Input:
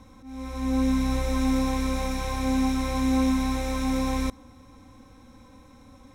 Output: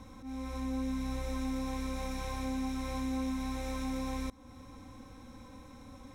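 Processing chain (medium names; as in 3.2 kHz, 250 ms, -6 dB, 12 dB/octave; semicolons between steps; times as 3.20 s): compression 2.5:1, threshold -38 dBFS, peak gain reduction 12 dB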